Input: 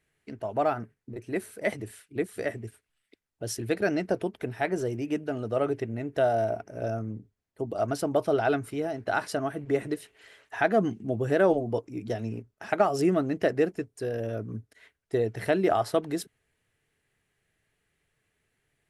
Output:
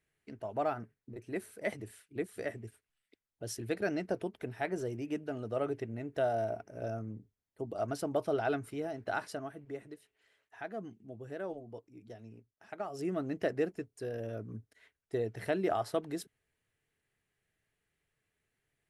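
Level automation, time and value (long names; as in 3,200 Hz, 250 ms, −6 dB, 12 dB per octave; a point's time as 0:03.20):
0:09.12 −7 dB
0:09.88 −18 dB
0:12.75 −18 dB
0:13.29 −7.5 dB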